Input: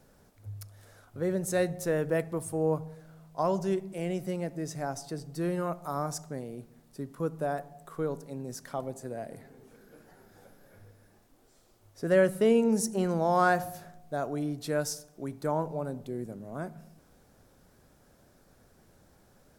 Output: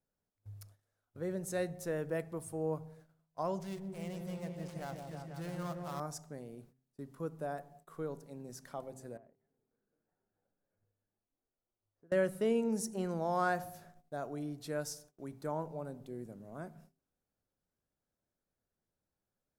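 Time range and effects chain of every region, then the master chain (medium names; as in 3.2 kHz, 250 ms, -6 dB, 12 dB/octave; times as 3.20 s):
3.60–6.00 s: dead-time distortion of 0.11 ms + peaking EQ 350 Hz -9.5 dB 0.95 oct + delay with an opening low-pass 163 ms, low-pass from 750 Hz, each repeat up 1 oct, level -3 dB
9.17–12.12 s: low-pass 1.6 kHz + compression 8:1, threshold -49 dBFS
whole clip: gate -50 dBFS, range -21 dB; de-hum 130.5 Hz, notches 3; trim -8 dB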